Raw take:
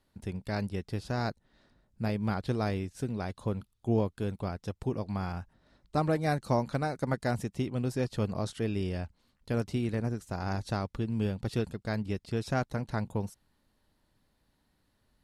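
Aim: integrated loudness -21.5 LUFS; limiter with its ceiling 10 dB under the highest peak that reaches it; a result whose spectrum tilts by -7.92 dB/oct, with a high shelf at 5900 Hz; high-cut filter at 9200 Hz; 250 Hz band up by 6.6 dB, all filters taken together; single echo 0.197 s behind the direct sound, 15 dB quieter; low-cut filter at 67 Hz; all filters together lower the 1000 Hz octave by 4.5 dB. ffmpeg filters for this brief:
-af "highpass=67,lowpass=9.2k,equalizer=f=250:t=o:g=8.5,equalizer=f=1k:t=o:g=-7.5,highshelf=f=5.9k:g=-3.5,alimiter=limit=-22dB:level=0:latency=1,aecho=1:1:197:0.178,volume=11.5dB"

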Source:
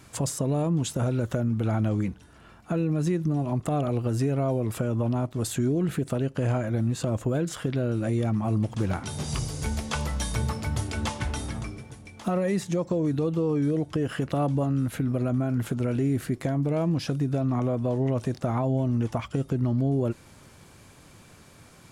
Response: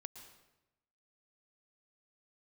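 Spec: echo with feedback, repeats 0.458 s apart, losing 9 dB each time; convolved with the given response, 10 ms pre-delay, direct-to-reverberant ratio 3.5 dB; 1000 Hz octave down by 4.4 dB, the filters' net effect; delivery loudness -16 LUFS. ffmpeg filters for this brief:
-filter_complex "[0:a]equalizer=f=1k:t=o:g=-6.5,aecho=1:1:458|916|1374|1832:0.355|0.124|0.0435|0.0152,asplit=2[a][b];[1:a]atrim=start_sample=2205,adelay=10[c];[b][c]afir=irnorm=-1:irlink=0,volume=1.5dB[d];[a][d]amix=inputs=2:normalize=0,volume=10.5dB"

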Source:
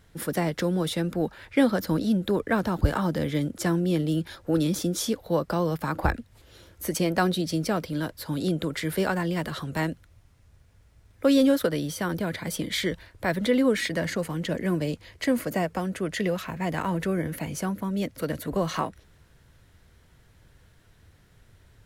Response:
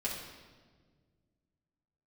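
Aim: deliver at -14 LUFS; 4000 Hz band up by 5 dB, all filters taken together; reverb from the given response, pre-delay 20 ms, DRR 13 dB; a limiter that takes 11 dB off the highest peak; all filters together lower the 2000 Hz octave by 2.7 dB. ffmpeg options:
-filter_complex "[0:a]equalizer=f=2k:t=o:g=-5,equalizer=f=4k:t=o:g=7.5,alimiter=limit=-19.5dB:level=0:latency=1,asplit=2[a][b];[1:a]atrim=start_sample=2205,adelay=20[c];[b][c]afir=irnorm=-1:irlink=0,volume=-17dB[d];[a][d]amix=inputs=2:normalize=0,volume=15.5dB"

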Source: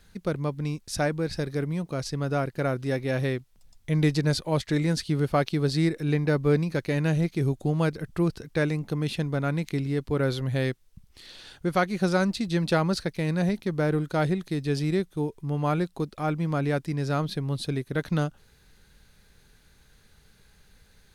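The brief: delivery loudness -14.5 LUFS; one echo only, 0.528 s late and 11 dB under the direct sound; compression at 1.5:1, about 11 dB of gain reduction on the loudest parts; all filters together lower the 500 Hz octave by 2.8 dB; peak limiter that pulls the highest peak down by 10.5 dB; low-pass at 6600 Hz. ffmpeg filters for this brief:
-af "lowpass=6.6k,equalizer=f=500:t=o:g=-3.5,acompressor=threshold=-51dB:ratio=1.5,alimiter=level_in=9.5dB:limit=-24dB:level=0:latency=1,volume=-9.5dB,aecho=1:1:528:0.282,volume=28dB"

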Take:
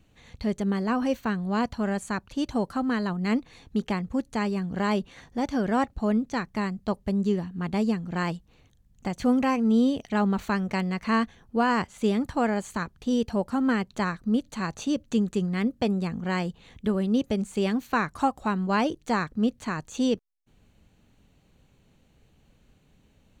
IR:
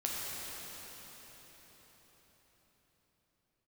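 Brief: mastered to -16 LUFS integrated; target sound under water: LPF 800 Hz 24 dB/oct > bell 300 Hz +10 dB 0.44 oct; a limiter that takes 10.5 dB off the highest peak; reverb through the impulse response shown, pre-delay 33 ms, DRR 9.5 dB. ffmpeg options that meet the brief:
-filter_complex "[0:a]alimiter=limit=-23.5dB:level=0:latency=1,asplit=2[a][b];[1:a]atrim=start_sample=2205,adelay=33[c];[b][c]afir=irnorm=-1:irlink=0,volume=-14.5dB[d];[a][d]amix=inputs=2:normalize=0,lowpass=f=800:w=0.5412,lowpass=f=800:w=1.3066,equalizer=f=300:t=o:w=0.44:g=10,volume=14dB"

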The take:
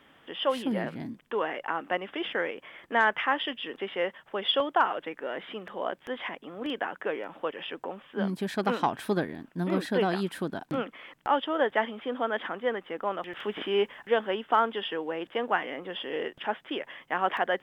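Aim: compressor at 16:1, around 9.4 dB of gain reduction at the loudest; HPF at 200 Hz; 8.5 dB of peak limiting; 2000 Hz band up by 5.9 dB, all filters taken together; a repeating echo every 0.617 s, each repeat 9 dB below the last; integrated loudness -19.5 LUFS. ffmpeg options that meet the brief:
-af "highpass=200,equalizer=f=2k:t=o:g=7.5,acompressor=threshold=-25dB:ratio=16,alimiter=limit=-22dB:level=0:latency=1,aecho=1:1:617|1234|1851|2468:0.355|0.124|0.0435|0.0152,volume=14dB"

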